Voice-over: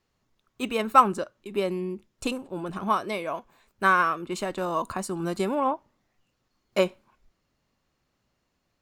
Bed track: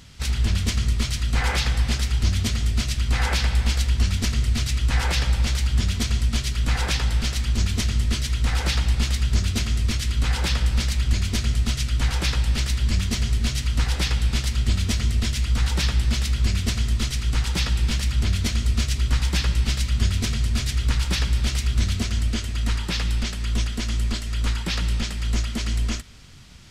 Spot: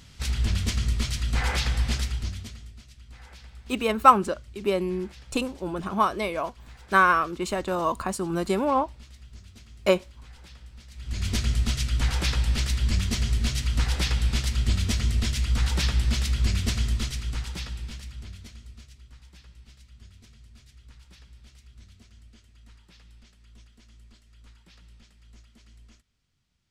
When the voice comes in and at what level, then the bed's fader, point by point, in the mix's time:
3.10 s, +2.0 dB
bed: 2 s -3.5 dB
2.81 s -25.5 dB
10.87 s -25.5 dB
11.27 s -2.5 dB
16.84 s -2.5 dB
19.12 s -29 dB

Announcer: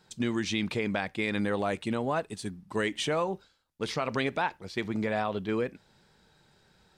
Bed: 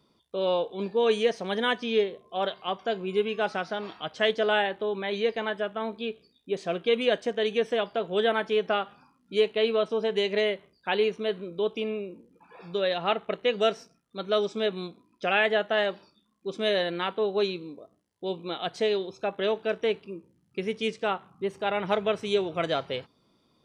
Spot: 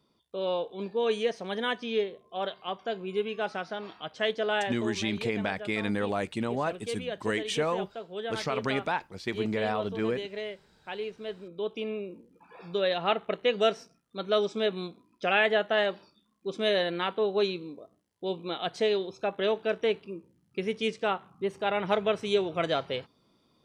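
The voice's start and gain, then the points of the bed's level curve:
4.50 s, -0.5 dB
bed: 4.75 s -4 dB
5.09 s -11 dB
11.02 s -11 dB
12.15 s -0.5 dB

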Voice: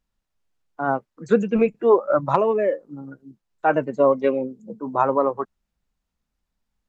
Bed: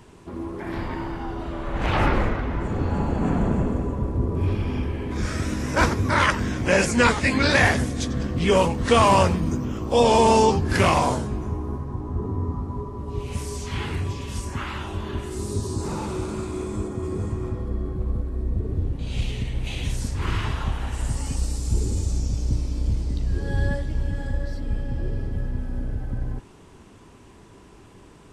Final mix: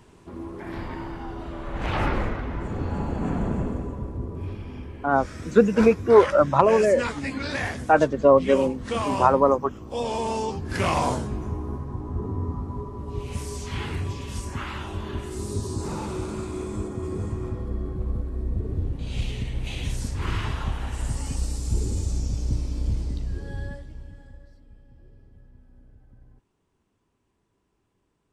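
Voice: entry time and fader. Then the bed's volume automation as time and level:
4.25 s, +1.5 dB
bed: 3.67 s -4 dB
4.64 s -11 dB
10.47 s -11 dB
11.07 s -2 dB
23.04 s -2 dB
24.69 s -24.5 dB

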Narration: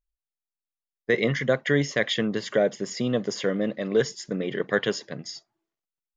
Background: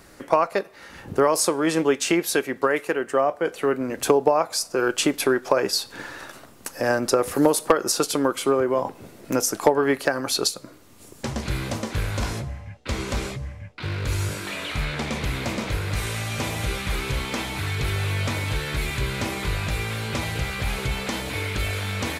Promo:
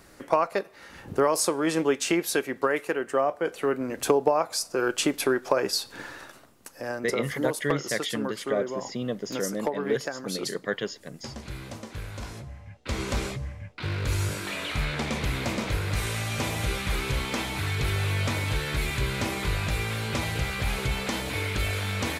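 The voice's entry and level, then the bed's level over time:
5.95 s, -5.5 dB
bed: 6.1 s -3.5 dB
6.6 s -11 dB
12.33 s -11 dB
13.03 s -1.5 dB

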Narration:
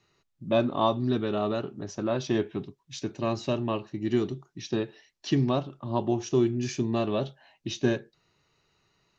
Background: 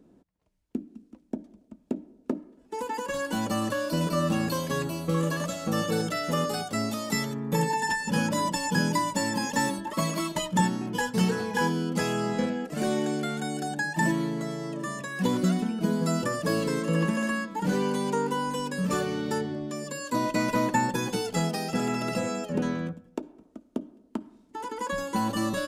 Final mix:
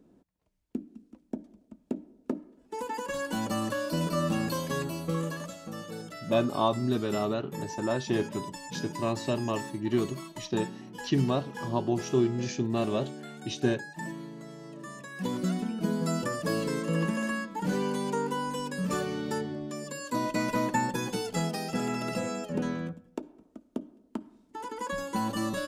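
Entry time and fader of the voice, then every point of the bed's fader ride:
5.80 s, -1.5 dB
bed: 5.02 s -2.5 dB
5.78 s -13 dB
14.35 s -13 dB
15.77 s -3 dB

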